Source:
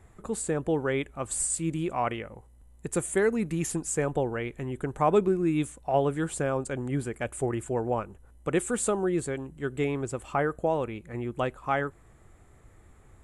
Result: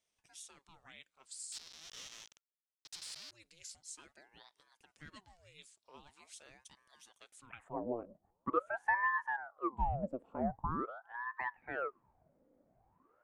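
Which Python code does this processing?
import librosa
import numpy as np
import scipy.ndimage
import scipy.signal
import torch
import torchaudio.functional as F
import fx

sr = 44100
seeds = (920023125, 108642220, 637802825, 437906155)

y = fx.schmitt(x, sr, flips_db=-37.5, at=(1.52, 3.31))
y = fx.filter_sweep_bandpass(y, sr, from_hz=4700.0, to_hz=410.0, start_s=7.37, end_s=7.87, q=4.6)
y = fx.ring_lfo(y, sr, carrier_hz=760.0, swing_pct=85, hz=0.44)
y = y * librosa.db_to_amplitude(1.0)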